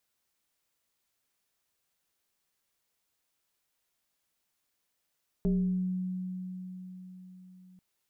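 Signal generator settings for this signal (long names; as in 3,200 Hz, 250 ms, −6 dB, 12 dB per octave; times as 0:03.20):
two-operator FM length 2.34 s, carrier 184 Hz, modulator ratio 1.17, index 0.88, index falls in 0.82 s exponential, decay 4.65 s, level −23 dB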